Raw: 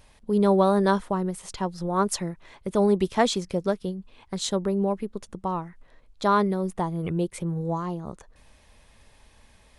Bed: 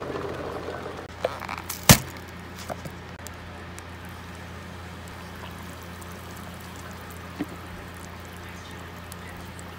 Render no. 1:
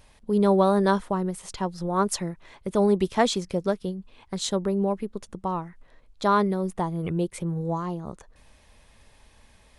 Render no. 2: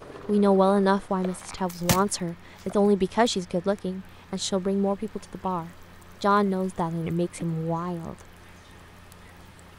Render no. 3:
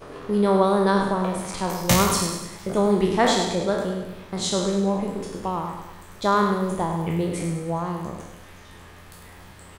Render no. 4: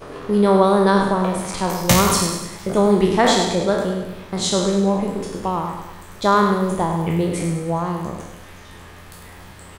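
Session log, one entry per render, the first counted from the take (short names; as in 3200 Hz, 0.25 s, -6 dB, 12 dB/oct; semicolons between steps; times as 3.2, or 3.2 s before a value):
nothing audible
add bed -10 dB
spectral trails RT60 0.78 s; feedback echo 0.102 s, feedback 50%, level -8.5 dB
gain +4.5 dB; limiter -3 dBFS, peak gain reduction 2.5 dB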